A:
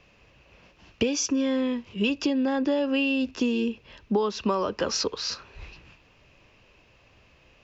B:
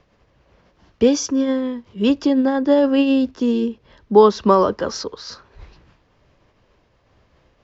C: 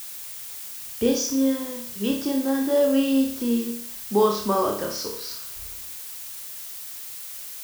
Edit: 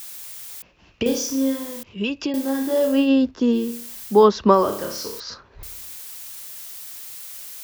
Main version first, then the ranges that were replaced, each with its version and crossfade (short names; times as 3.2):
C
0.62–1.06 from A
1.83–2.34 from A
2.98–3.63 from B, crossfade 0.24 s
4.17–4.62 from B, crossfade 0.24 s
5.2–5.63 from B